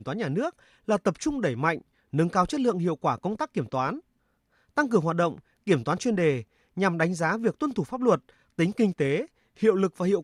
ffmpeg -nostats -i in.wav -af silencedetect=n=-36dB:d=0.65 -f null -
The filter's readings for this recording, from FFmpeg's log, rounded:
silence_start: 3.99
silence_end: 4.77 | silence_duration: 0.79